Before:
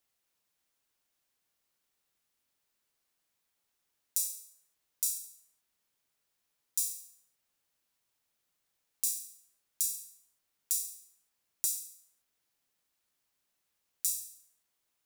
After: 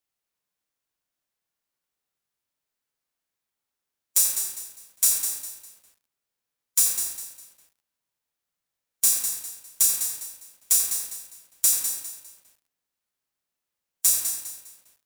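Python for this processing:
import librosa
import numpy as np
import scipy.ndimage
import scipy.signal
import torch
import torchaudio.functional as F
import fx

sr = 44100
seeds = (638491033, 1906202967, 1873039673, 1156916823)

p1 = fx.hpss(x, sr, part='harmonic', gain_db=4)
p2 = fx.leveller(p1, sr, passes=3)
p3 = p2 + fx.echo_bbd(p2, sr, ms=81, stages=1024, feedback_pct=49, wet_db=-3.5, dry=0)
p4 = fx.echo_crushed(p3, sr, ms=202, feedback_pct=35, bits=8, wet_db=-8.0)
y = p4 * librosa.db_to_amplitude(-1.5)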